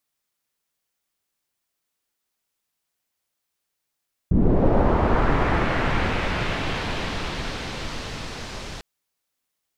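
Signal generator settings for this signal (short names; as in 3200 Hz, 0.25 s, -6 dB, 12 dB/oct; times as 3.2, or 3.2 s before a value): swept filtered noise pink, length 4.50 s lowpass, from 170 Hz, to 5600 Hz, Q 1.1, linear, gain ramp -22 dB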